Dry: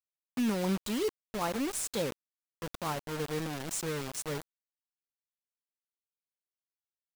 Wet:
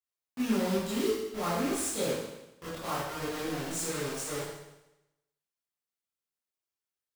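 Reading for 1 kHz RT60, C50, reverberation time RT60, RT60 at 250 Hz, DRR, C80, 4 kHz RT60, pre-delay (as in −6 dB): 0.95 s, −0.5 dB, 0.95 s, 0.90 s, −10.5 dB, 3.0 dB, 0.95 s, 18 ms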